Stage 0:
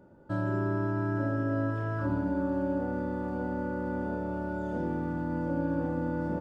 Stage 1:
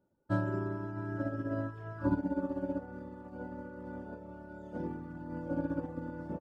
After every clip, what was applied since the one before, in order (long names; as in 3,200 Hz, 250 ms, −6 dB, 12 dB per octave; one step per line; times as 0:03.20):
reverb reduction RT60 1.1 s
expander for the loud parts 2.5 to 1, over −44 dBFS
level +4 dB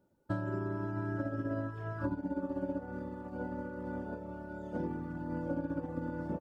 downward compressor 12 to 1, threshold −35 dBFS, peak gain reduction 11.5 dB
level +4 dB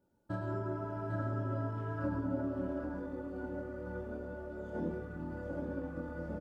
loudspeakers that aren't time-aligned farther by 38 metres −5 dB, 63 metres −11 dB
multi-voice chorus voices 6, 0.89 Hz, delay 25 ms, depth 2.6 ms
single-tap delay 797 ms −6 dB